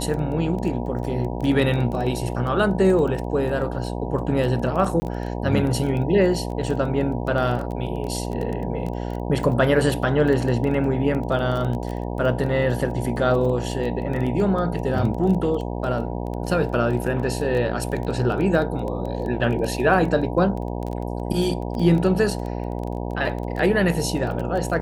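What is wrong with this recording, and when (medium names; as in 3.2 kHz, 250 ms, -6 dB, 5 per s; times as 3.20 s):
buzz 60 Hz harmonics 16 -28 dBFS
crackle 15 per s -27 dBFS
5.00–5.02 s: dropout 20 ms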